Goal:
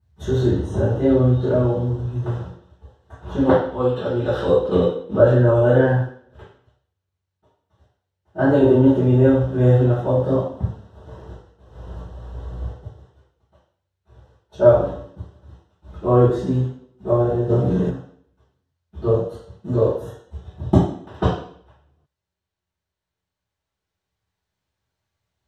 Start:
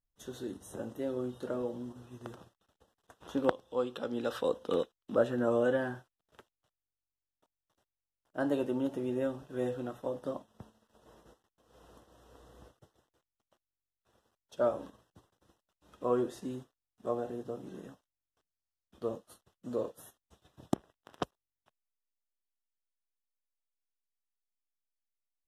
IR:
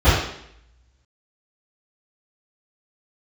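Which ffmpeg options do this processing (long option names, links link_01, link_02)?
-filter_complex "[1:a]atrim=start_sample=2205,asetrate=52920,aresample=44100[link_01];[0:a][link_01]afir=irnorm=-1:irlink=0,dynaudnorm=framelen=280:gausssize=21:maxgain=11.5dB,asettb=1/sr,asplit=3[link_02][link_03][link_04];[link_02]atrim=end=0.514[link_05];[link_03]atrim=start=0.51:end=1.6,asetpts=PTS-STARTPTS,afade=type=in:duration=0.004:curve=qsin,afade=type=out:start_time=1.086:duration=0.004:curve=qsin,lowpass=7700[link_06];[link_04]atrim=start=1.596[link_07];[link_05][link_06]acrossfade=duration=0.004:curve1=hsin:curve2=qsin[link_08];[link_08][link_07]acrossfade=duration=0.004:curve1=qsin:curve2=hsin,asplit=3[link_09][link_10][link_11];[link_09]afade=type=out:start_time=17.49:duration=0.02[link_12];[link_10]acontrast=62,afade=type=in:start_time=17.49:duration=0.02,afade=type=out:start_time=17.89:duration=0.02[link_13];[link_11]afade=type=in:start_time=17.89:duration=0.02[link_14];[link_12][link_13][link_14]amix=inputs=3:normalize=0,volume=-1dB"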